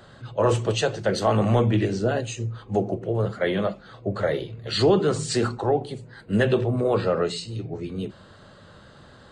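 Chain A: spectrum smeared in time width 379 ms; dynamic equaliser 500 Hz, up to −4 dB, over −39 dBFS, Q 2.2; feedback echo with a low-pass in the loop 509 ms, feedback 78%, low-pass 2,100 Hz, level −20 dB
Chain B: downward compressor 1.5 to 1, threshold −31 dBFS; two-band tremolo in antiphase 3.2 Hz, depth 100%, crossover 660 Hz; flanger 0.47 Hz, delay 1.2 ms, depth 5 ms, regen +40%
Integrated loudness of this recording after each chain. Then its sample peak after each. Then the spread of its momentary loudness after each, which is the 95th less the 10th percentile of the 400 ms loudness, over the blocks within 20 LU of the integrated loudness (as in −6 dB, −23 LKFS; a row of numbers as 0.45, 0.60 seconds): −29.0, −38.5 LKFS; −14.0, −22.0 dBFS; 15, 14 LU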